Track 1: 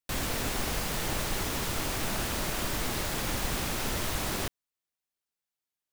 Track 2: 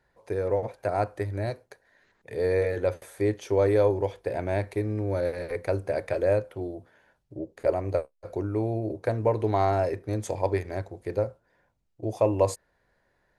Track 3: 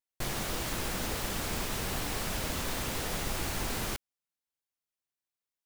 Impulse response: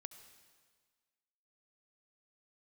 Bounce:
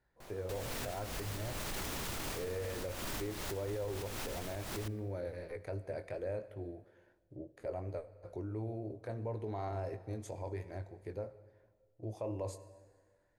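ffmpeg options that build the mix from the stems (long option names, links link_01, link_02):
-filter_complex "[0:a]adelay=400,volume=-1dB,asplit=2[link_01][link_02];[link_02]volume=-17.5dB[link_03];[1:a]lowshelf=frequency=220:gain=4.5,volume=-9.5dB,asplit=3[link_04][link_05][link_06];[link_05]volume=-5dB[link_07];[2:a]equalizer=frequency=730:width=0.57:gain=7,volume=-18dB[link_08];[link_06]apad=whole_len=278752[link_09];[link_01][link_09]sidechaincompress=threshold=-48dB:ratio=8:attack=8.1:release=170[link_10];[link_04][link_08]amix=inputs=2:normalize=0,flanger=delay=17:depth=6.5:speed=2.9,acompressor=threshold=-52dB:ratio=1.5,volume=0dB[link_11];[3:a]atrim=start_sample=2205[link_12];[link_03][link_07]amix=inputs=2:normalize=0[link_13];[link_13][link_12]afir=irnorm=-1:irlink=0[link_14];[link_10][link_11][link_14]amix=inputs=3:normalize=0,alimiter=level_in=6.5dB:limit=-24dB:level=0:latency=1:release=22,volume=-6.5dB"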